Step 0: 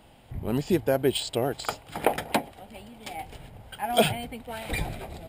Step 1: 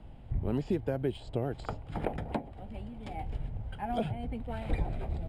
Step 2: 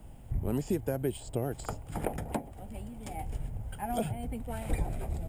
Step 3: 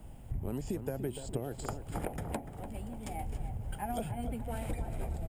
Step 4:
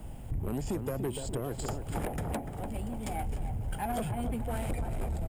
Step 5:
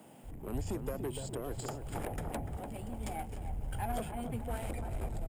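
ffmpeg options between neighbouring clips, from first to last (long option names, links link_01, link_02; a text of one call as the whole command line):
ffmpeg -i in.wav -filter_complex "[0:a]acrossover=split=290|1300[link_01][link_02][link_03];[link_01]acompressor=threshold=-39dB:ratio=4[link_04];[link_02]acompressor=threshold=-30dB:ratio=4[link_05];[link_03]acompressor=threshold=-40dB:ratio=4[link_06];[link_04][link_05][link_06]amix=inputs=3:normalize=0,aemphasis=mode=reproduction:type=riaa,volume=-5dB" out.wav
ffmpeg -i in.wav -af "aexciter=amount=10.3:drive=2.6:freq=5900" out.wav
ffmpeg -i in.wav -filter_complex "[0:a]acompressor=threshold=-32dB:ratio=6,asplit=2[link_01][link_02];[link_02]adelay=293,lowpass=frequency=2000:poles=1,volume=-9dB,asplit=2[link_03][link_04];[link_04]adelay=293,lowpass=frequency=2000:poles=1,volume=0.51,asplit=2[link_05][link_06];[link_06]adelay=293,lowpass=frequency=2000:poles=1,volume=0.51,asplit=2[link_07][link_08];[link_08]adelay=293,lowpass=frequency=2000:poles=1,volume=0.51,asplit=2[link_09][link_10];[link_10]adelay=293,lowpass=frequency=2000:poles=1,volume=0.51,asplit=2[link_11][link_12];[link_12]adelay=293,lowpass=frequency=2000:poles=1,volume=0.51[link_13];[link_03][link_05][link_07][link_09][link_11][link_13]amix=inputs=6:normalize=0[link_14];[link_01][link_14]amix=inputs=2:normalize=0" out.wav
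ffmpeg -i in.wav -af "asoftclip=type=tanh:threshold=-33.5dB,volume=6.5dB" out.wav
ffmpeg -i in.wav -filter_complex "[0:a]acrossover=split=170[link_01][link_02];[link_01]adelay=230[link_03];[link_03][link_02]amix=inputs=2:normalize=0,volume=-3.5dB" out.wav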